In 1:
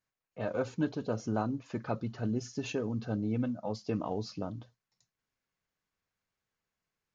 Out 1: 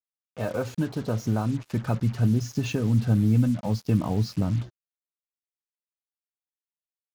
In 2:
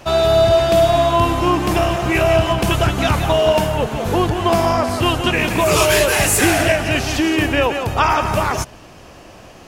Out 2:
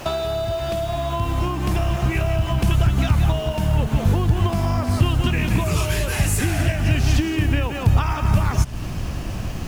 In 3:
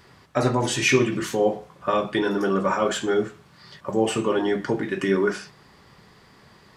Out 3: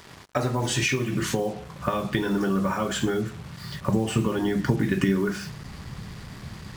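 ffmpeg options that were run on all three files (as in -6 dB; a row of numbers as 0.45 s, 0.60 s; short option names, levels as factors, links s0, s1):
-af "acompressor=threshold=0.0398:ratio=12,asubboost=boost=6:cutoff=190,acrusher=bits=7:mix=0:aa=0.5,volume=2"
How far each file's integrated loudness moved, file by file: +9.5 LU, -5.5 LU, -2.5 LU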